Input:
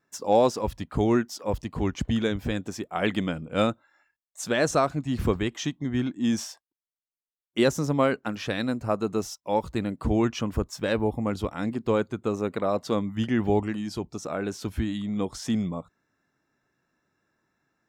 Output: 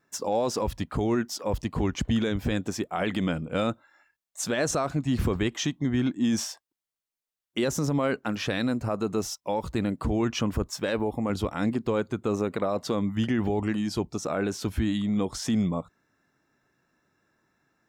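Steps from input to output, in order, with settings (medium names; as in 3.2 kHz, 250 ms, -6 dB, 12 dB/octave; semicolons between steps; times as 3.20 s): 10.73–11.30 s: bass shelf 140 Hz -9 dB; peak limiter -20.5 dBFS, peak gain reduction 10.5 dB; trim +3.5 dB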